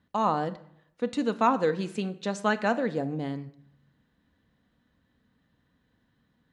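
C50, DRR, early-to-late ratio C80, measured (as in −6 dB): 16.0 dB, 9.0 dB, 19.0 dB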